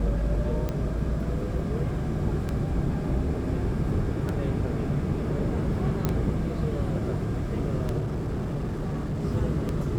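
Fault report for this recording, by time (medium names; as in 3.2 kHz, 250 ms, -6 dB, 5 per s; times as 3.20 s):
tick 33 1/3 rpm -17 dBFS
6.05 s: pop -12 dBFS
7.98–9.25 s: clipped -25.5 dBFS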